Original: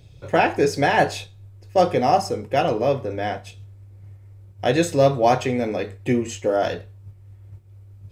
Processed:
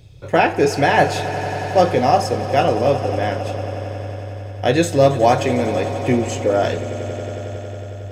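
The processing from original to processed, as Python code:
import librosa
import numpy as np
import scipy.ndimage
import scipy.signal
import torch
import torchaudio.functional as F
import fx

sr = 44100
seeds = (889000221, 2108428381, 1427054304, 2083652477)

y = fx.echo_swell(x, sr, ms=91, loudest=5, wet_db=-17)
y = F.gain(torch.from_numpy(y), 3.0).numpy()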